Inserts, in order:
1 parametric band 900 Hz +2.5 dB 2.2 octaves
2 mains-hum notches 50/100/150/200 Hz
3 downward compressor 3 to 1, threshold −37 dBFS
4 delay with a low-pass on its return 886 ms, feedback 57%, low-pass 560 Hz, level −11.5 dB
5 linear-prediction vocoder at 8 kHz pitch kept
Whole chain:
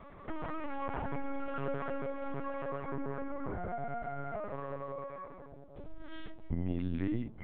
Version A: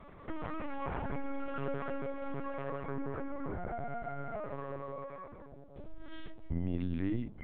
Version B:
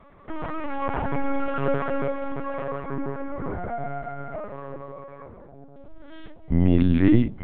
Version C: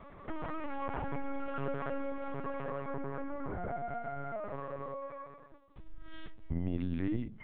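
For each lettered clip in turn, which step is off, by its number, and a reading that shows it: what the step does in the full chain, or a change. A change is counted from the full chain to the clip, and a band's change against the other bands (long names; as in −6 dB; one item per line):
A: 1, change in momentary loudness spread +1 LU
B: 3, average gain reduction 7.5 dB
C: 4, change in momentary loudness spread +3 LU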